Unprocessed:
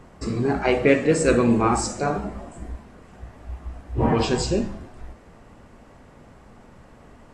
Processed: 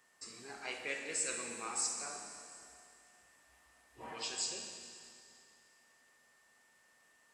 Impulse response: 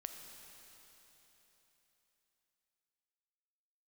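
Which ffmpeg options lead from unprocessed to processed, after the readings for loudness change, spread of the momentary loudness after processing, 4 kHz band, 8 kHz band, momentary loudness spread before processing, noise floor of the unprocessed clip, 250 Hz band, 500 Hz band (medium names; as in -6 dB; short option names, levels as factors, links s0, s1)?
-17.5 dB, 18 LU, -8.5 dB, -4.0 dB, 20 LU, -50 dBFS, -32.5 dB, -27.0 dB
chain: -filter_complex "[0:a]aderivative,aeval=exprs='val(0)+0.000501*sin(2*PI*1800*n/s)':c=same[s0];[1:a]atrim=start_sample=2205,asetrate=66150,aresample=44100[s1];[s0][s1]afir=irnorm=-1:irlink=0,volume=1.41"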